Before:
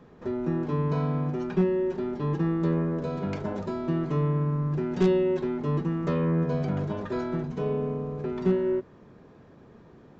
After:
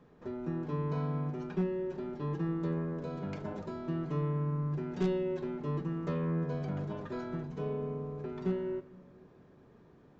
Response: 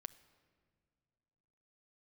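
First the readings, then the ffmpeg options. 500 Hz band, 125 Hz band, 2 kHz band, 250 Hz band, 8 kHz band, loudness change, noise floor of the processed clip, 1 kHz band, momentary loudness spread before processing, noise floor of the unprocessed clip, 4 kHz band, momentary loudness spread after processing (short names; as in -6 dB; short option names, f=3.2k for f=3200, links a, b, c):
-8.5 dB, -7.0 dB, -7.5 dB, -8.0 dB, n/a, -8.0 dB, -60 dBFS, -7.5 dB, 7 LU, -53 dBFS, -8.0 dB, 7 LU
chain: -filter_complex "[1:a]atrim=start_sample=2205[a];[0:a][a]afir=irnorm=-1:irlink=0,volume=-3dB"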